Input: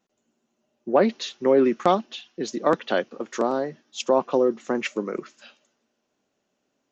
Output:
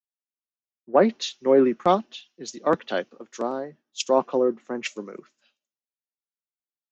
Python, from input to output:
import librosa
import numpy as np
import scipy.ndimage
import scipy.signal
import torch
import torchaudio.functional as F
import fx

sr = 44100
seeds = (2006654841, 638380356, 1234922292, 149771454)

y = fx.band_widen(x, sr, depth_pct=100)
y = y * 10.0 ** (-2.5 / 20.0)